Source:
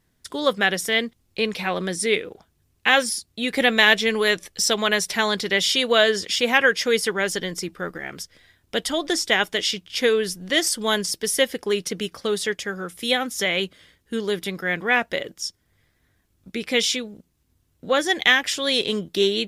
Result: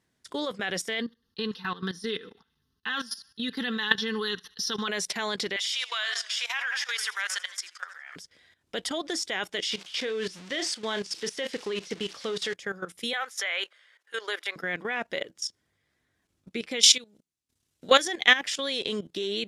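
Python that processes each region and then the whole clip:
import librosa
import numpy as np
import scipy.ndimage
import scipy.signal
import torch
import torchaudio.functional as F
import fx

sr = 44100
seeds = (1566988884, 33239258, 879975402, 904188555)

y = fx.chain(x, sr, fx.fixed_phaser(hz=2300.0, stages=6),
    fx.comb(ms=4.5, depth=0.48),
    fx.echo_thinned(ms=75, feedback_pct=47, hz=520.0, wet_db=-23.0), at=(1.0, 4.88))
y = fx.chain(y, sr, fx.highpass(hz=1000.0, slope=24),
    fx.echo_warbled(ms=82, feedback_pct=59, rate_hz=2.8, cents=115, wet_db=-13.5), at=(5.56, 8.16))
y = fx.chain(y, sr, fx.crossing_spikes(level_db=-18.0),
    fx.lowpass(hz=4100.0, slope=12),
    fx.doubler(ms=36.0, db=-13), at=(9.7, 12.54))
y = fx.chain(y, sr, fx.highpass(hz=520.0, slope=24),
    fx.peak_eq(hz=1600.0, db=8.5, octaves=1.4), at=(13.13, 14.56))
y = fx.chain(y, sr, fx.high_shelf(hz=2300.0, db=11.5),
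    fx.transient(attack_db=3, sustain_db=-11), at=(16.81, 18.08))
y = fx.highpass(y, sr, hz=190.0, slope=6)
y = fx.level_steps(y, sr, step_db=15)
y = scipy.signal.sosfilt(scipy.signal.butter(2, 9300.0, 'lowpass', fs=sr, output='sos'), y)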